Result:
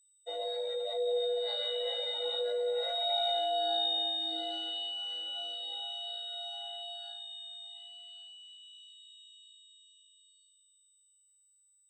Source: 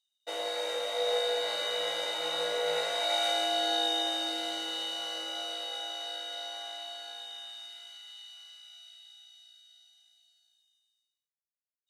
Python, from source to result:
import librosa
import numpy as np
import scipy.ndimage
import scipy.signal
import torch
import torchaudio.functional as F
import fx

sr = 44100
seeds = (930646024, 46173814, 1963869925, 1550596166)

y = fx.spec_expand(x, sr, power=2.1)
y = y + 10.0 ** (-18.5 / 20.0) * np.pad(y, (int(1116 * sr / 1000.0), 0))[:len(y)]
y = y + 10.0 ** (-64.0 / 20.0) * np.sin(2.0 * np.pi * 8000.0 * np.arange(len(y)) / sr)
y = F.gain(torch.from_numpy(y), -1.5).numpy()